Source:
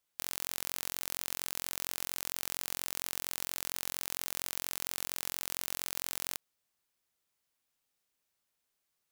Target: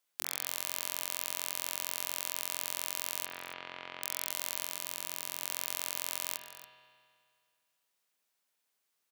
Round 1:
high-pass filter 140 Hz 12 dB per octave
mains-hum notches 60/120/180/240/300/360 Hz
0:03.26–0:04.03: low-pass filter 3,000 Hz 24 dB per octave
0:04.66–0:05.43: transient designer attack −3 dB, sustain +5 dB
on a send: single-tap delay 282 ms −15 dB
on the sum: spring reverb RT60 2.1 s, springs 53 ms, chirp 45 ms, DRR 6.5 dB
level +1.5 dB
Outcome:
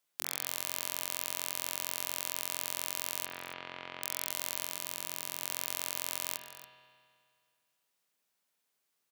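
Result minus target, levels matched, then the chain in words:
250 Hz band +3.0 dB
high-pass filter 140 Hz 12 dB per octave
low-shelf EQ 330 Hz −5 dB
mains-hum notches 60/120/180/240/300/360 Hz
0:03.26–0:04.03: low-pass filter 3,000 Hz 24 dB per octave
0:04.66–0:05.43: transient designer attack −3 dB, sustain +5 dB
on a send: single-tap delay 282 ms −15 dB
on the sum: spring reverb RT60 2.1 s, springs 53 ms, chirp 45 ms, DRR 6.5 dB
level +1.5 dB

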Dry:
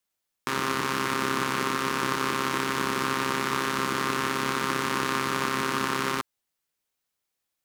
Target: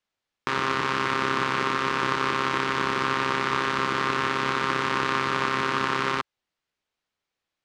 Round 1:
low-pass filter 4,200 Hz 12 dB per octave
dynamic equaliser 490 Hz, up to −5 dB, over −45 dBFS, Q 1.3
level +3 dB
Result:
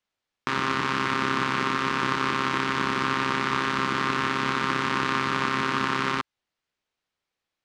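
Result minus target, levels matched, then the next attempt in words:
250 Hz band +3.0 dB
low-pass filter 4,200 Hz 12 dB per octave
dynamic equaliser 230 Hz, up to −5 dB, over −45 dBFS, Q 1.3
level +3 dB

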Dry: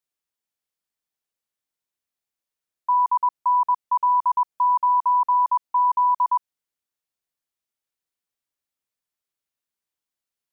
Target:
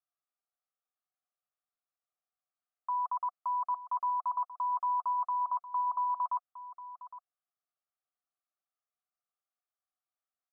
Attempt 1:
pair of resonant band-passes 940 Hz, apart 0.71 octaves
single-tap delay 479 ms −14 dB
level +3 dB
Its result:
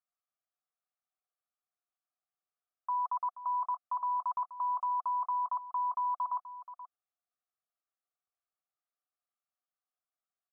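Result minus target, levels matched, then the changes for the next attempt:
echo 332 ms early
change: single-tap delay 811 ms −14 dB

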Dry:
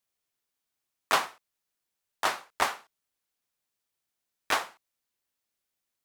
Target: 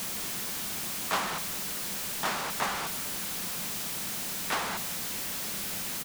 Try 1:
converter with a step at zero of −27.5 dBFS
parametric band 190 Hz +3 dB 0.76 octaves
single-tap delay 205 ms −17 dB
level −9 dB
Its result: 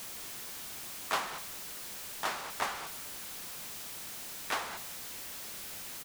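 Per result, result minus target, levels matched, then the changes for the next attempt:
250 Hz band −4.5 dB; converter with a step at zero: distortion −6 dB
change: parametric band 190 Hz +11 dB 0.76 octaves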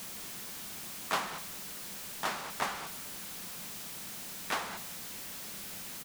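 converter with a step at zero: distortion −6 dB
change: converter with a step at zero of −19 dBFS

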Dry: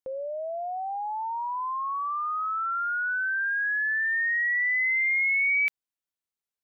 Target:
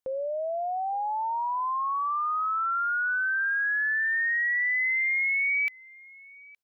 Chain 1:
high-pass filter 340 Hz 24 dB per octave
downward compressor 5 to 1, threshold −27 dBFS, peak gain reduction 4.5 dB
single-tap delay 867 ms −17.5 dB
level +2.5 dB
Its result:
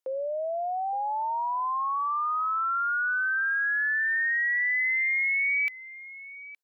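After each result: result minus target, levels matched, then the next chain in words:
250 Hz band −5.5 dB; echo-to-direct +6.5 dB
downward compressor 5 to 1, threshold −27 dBFS, peak gain reduction 4.5 dB
single-tap delay 867 ms −17.5 dB
level +2.5 dB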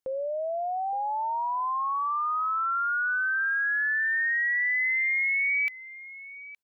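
echo-to-direct +6.5 dB
downward compressor 5 to 1, threshold −27 dBFS, peak gain reduction 4.5 dB
single-tap delay 867 ms −24 dB
level +2.5 dB

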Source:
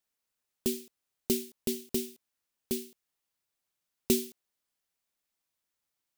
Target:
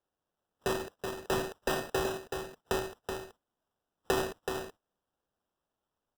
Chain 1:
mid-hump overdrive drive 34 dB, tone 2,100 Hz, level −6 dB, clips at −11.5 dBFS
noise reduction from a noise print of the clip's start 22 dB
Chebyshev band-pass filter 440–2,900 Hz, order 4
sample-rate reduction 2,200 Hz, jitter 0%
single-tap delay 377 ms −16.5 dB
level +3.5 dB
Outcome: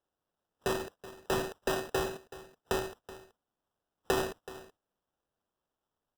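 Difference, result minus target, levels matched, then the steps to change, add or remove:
echo-to-direct −10.5 dB
change: single-tap delay 377 ms −6 dB

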